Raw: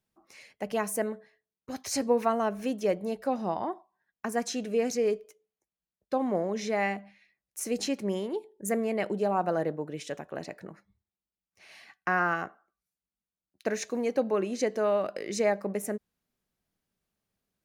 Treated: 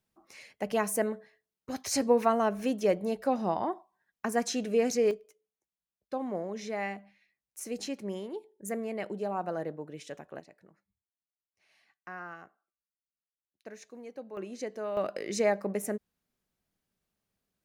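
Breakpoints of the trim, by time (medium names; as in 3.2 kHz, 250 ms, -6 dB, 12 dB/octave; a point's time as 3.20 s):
+1 dB
from 5.11 s -6 dB
from 10.40 s -16 dB
from 14.37 s -9 dB
from 14.97 s -0.5 dB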